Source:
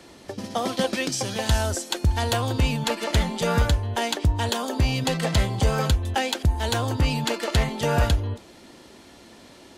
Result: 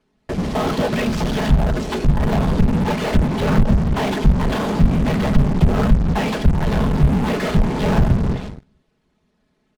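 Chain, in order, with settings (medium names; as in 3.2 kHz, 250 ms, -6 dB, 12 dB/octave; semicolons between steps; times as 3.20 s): one-bit delta coder 64 kbps, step -39 dBFS; gate with hold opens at -31 dBFS; treble shelf 5.4 kHz -9.5 dB; whisper effect; tone controls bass +10 dB, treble -5 dB; low-pass that closes with the level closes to 640 Hz, closed at -7 dBFS; on a send: feedback delay 234 ms, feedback 23%, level -24 dB; on the sum: harmonic-percussive split percussive -7 dB; comb 4.7 ms, depth 80%; harmonic-percussive split percussive +7 dB; in parallel at -4.5 dB: fuzz box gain 34 dB, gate -43 dBFS; on the sum: trim -5 dB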